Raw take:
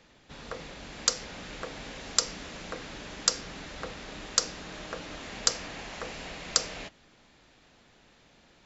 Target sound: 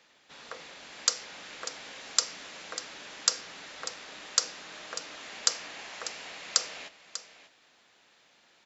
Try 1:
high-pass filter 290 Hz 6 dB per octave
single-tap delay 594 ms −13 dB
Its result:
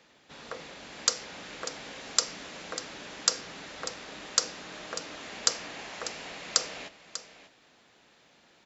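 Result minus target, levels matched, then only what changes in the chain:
250 Hz band +7.5 dB
change: high-pass filter 920 Hz 6 dB per octave

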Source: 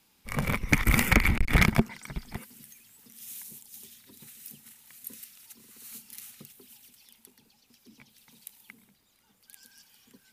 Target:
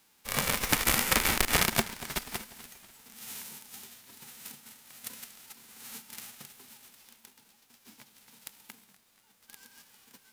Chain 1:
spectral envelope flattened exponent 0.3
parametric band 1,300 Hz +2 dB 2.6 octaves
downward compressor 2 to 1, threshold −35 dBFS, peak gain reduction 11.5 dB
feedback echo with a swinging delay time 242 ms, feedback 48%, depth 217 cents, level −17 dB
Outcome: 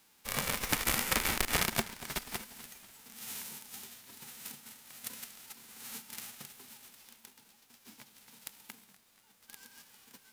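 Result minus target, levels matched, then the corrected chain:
downward compressor: peak gain reduction +5 dB
spectral envelope flattened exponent 0.3
parametric band 1,300 Hz +2 dB 2.6 octaves
downward compressor 2 to 1, threshold −25.5 dBFS, peak gain reduction 7 dB
feedback echo with a swinging delay time 242 ms, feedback 48%, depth 217 cents, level −17 dB

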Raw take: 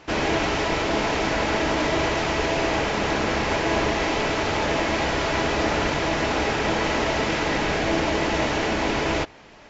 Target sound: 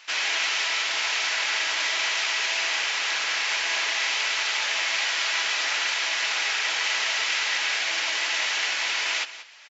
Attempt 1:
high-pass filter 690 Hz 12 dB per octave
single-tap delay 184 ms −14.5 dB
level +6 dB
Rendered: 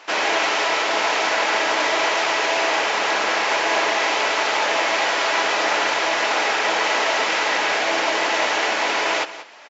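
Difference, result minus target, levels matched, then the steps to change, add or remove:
500 Hz band +14.0 dB
change: high-pass filter 2,200 Hz 12 dB per octave

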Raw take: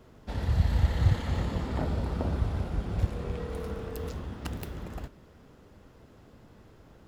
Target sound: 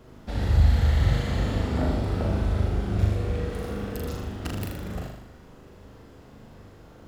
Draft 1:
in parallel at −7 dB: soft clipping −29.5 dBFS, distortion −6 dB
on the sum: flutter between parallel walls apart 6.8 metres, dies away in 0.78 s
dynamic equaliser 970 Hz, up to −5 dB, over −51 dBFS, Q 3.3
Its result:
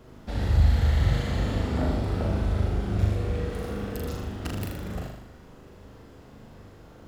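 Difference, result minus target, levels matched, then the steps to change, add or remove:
soft clipping: distortion +7 dB
change: soft clipping −20.5 dBFS, distortion −13 dB

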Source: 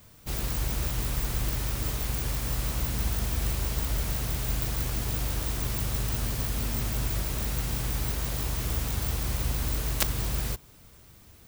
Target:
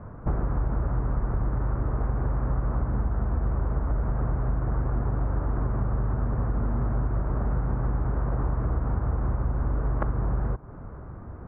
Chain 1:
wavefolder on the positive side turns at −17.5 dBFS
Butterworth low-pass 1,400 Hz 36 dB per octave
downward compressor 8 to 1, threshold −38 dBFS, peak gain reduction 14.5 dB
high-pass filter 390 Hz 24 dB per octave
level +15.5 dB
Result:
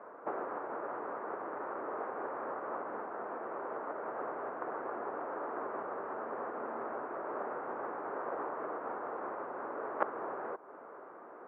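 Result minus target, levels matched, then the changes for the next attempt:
500 Hz band +10.5 dB; wavefolder on the positive side: distortion +8 dB
change: wavefolder on the positive side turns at −9.5 dBFS
remove: high-pass filter 390 Hz 24 dB per octave

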